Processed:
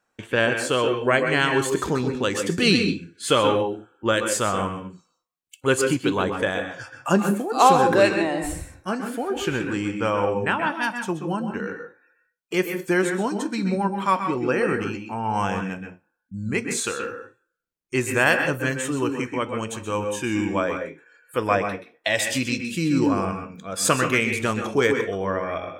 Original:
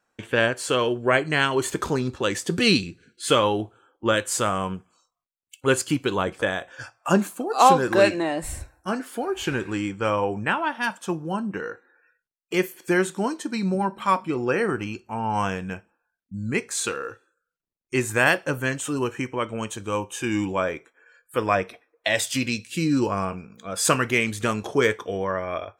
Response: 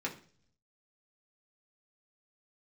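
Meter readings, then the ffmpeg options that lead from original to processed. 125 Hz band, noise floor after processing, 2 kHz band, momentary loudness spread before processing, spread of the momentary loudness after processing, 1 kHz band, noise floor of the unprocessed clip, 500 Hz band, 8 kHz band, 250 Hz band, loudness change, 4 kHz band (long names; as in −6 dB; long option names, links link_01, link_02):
+1.0 dB, −74 dBFS, +1.0 dB, 12 LU, 11 LU, +1.0 dB, −81 dBFS, +1.5 dB, +0.5 dB, +2.0 dB, +1.0 dB, +0.5 dB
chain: -filter_complex "[0:a]asplit=2[link_01][link_02];[1:a]atrim=start_sample=2205,afade=type=out:start_time=0.15:duration=0.01,atrim=end_sample=7056,adelay=127[link_03];[link_02][link_03]afir=irnorm=-1:irlink=0,volume=-8.5dB[link_04];[link_01][link_04]amix=inputs=2:normalize=0"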